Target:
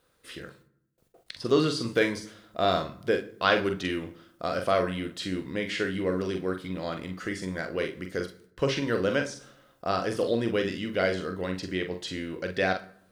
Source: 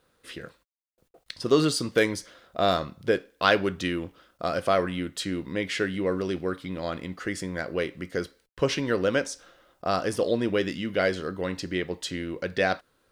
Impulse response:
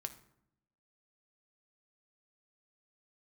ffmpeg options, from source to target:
-filter_complex "[0:a]asplit=2[link_01][link_02];[1:a]atrim=start_sample=2205,adelay=43[link_03];[link_02][link_03]afir=irnorm=-1:irlink=0,volume=-3.5dB[link_04];[link_01][link_04]amix=inputs=2:normalize=0,acrossover=split=5200[link_05][link_06];[link_06]acompressor=threshold=-48dB:ratio=4:attack=1:release=60[link_07];[link_05][link_07]amix=inputs=2:normalize=0,highshelf=frequency=5500:gain=4,volume=-2.5dB"

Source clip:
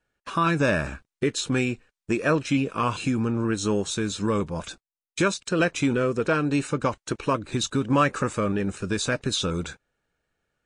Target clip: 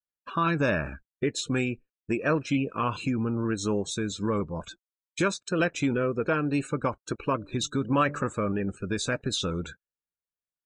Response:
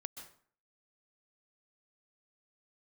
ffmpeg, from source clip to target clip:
-filter_complex "[0:a]asplit=3[link_01][link_02][link_03];[link_01]afade=type=out:start_time=7.39:duration=0.02[link_04];[link_02]bandreject=frequency=146.1:width_type=h:width=4,bandreject=frequency=292.2:width_type=h:width=4,bandreject=frequency=438.3:width_type=h:width=4,bandreject=frequency=584.4:width_type=h:width=4,afade=type=in:start_time=7.39:duration=0.02,afade=type=out:start_time=8.23:duration=0.02[link_05];[link_03]afade=type=in:start_time=8.23:duration=0.02[link_06];[link_04][link_05][link_06]amix=inputs=3:normalize=0,afftdn=noise_reduction=26:noise_floor=-39,volume=-3dB"

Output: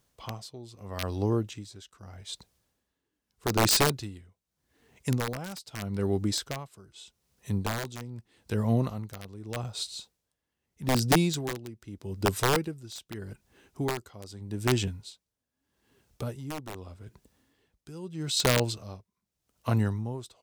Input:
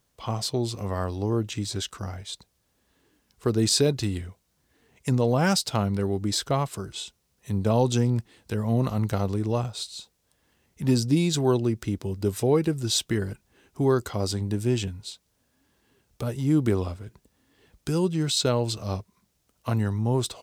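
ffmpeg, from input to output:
ffmpeg -i in.wav -af "aeval=exprs='(mod(5.01*val(0)+1,2)-1)/5.01':channel_layout=same,aeval=exprs='val(0)*pow(10,-18*(0.5-0.5*cos(2*PI*0.81*n/s))/20)':channel_layout=same" out.wav

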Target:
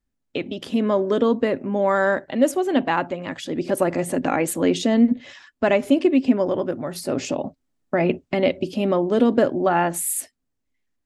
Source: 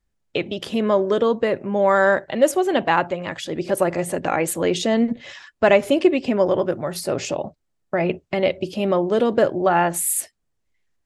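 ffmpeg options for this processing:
ffmpeg -i in.wav -af "equalizer=frequency=260:width_type=o:width=0.34:gain=13,dynaudnorm=framelen=150:gausssize=13:maxgain=11.5dB,volume=-5dB" out.wav

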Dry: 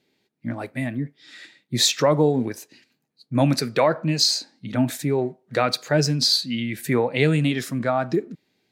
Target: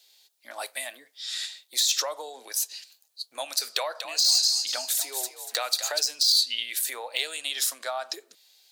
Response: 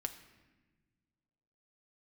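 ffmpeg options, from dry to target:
-filter_complex "[0:a]acompressor=threshold=-28dB:ratio=4,highpass=frequency=620:width=0.5412,highpass=frequency=620:width=1.3066,asettb=1/sr,asplit=3[link_01][link_02][link_03];[link_01]atrim=end=3.714[link_04];[link_02]atrim=start=3.71:end=6.03,asetpts=PTS-STARTPTS,afade=type=in:duration=0.004:curve=qsin,afade=type=out:start_time=2.316:duration=0.004:curve=qsin,asplit=5[link_05][link_06][link_07][link_08][link_09];[link_06]adelay=239,afreqshift=55,volume=-10dB[link_10];[link_07]adelay=478,afreqshift=110,volume=-18.9dB[link_11];[link_08]adelay=717,afreqshift=165,volume=-27.7dB[link_12];[link_09]adelay=956,afreqshift=220,volume=-36.6dB[link_13];[link_05][link_10][link_11][link_12][link_13]amix=inputs=5:normalize=0,atrim=end_sample=102312[link_14];[link_03]atrim=start=6.026[link_15];[link_04][link_14]acrossfade=duration=0.004:curve1=hsin:curve2=qsin[link_16];[link_16][link_15]acrossfade=duration=0.004:curve1=qsin:curve2=hsin,deesser=0.8,aexciter=amount=4.9:drive=6.4:freq=3100,volume=1.5dB"

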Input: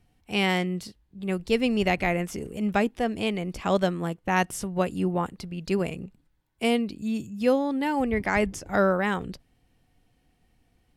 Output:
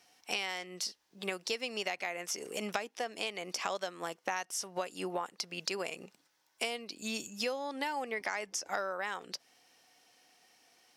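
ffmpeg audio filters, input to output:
ffmpeg -i in.wav -af "highpass=620,equalizer=frequency=5600:width_type=o:width=0.6:gain=11.5,acompressor=threshold=-40dB:ratio=10,volume=7.5dB" out.wav

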